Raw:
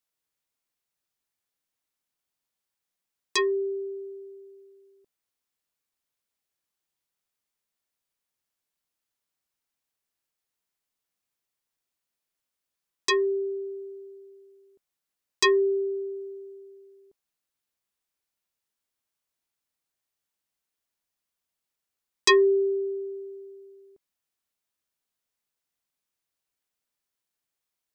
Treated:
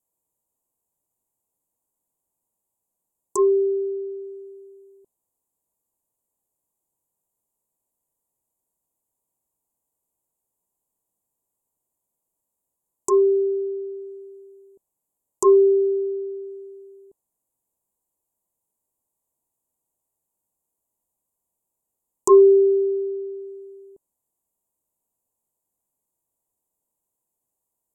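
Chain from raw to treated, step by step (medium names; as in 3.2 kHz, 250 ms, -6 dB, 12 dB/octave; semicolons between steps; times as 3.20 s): Chebyshev band-stop 1–7.1 kHz, order 4; low-pass that closes with the level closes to 1.5 kHz, closed at -29 dBFS; trim +8 dB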